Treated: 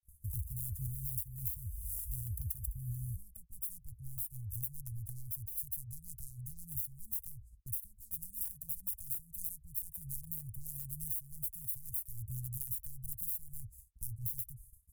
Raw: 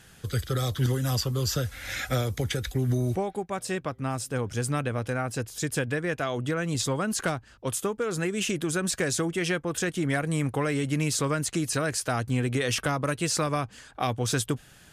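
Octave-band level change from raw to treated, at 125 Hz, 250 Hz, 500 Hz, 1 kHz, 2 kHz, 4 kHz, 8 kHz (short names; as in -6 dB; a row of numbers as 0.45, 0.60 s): -14.5 dB, -27.5 dB, under -40 dB, under -40 dB, under -40 dB, under -35 dB, -13.0 dB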